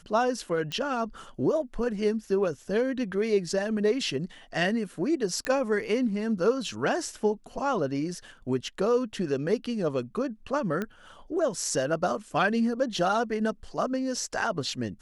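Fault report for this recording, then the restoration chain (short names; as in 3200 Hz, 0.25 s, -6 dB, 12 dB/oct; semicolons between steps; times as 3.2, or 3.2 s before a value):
0.72 pop -19 dBFS
5.45 pop -15 dBFS
10.82 pop -18 dBFS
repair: de-click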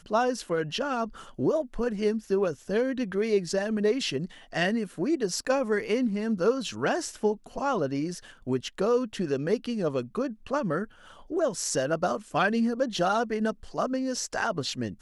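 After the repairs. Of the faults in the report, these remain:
none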